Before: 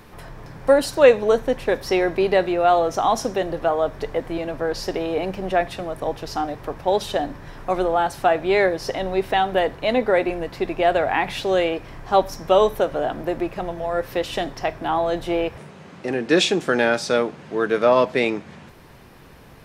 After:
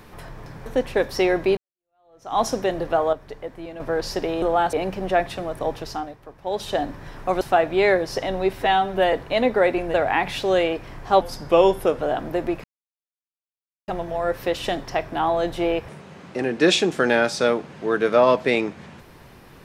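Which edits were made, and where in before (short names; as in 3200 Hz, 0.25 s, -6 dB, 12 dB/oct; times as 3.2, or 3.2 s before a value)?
0.66–1.38 cut
2.29–3.11 fade in exponential
3.85–4.52 gain -9 dB
6.19–7.2 dip -13 dB, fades 0.40 s
7.82–8.13 move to 5.14
9.25–9.65 stretch 1.5×
10.46–10.95 cut
12.22–12.93 speed 90%
13.57 insert silence 1.24 s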